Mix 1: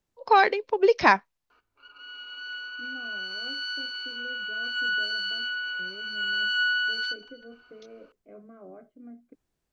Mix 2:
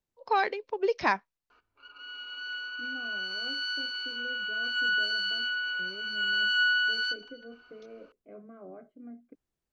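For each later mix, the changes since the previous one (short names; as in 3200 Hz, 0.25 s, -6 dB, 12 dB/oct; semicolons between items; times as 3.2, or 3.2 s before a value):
first voice -7.5 dB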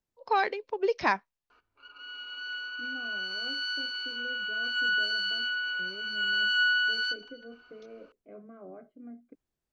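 none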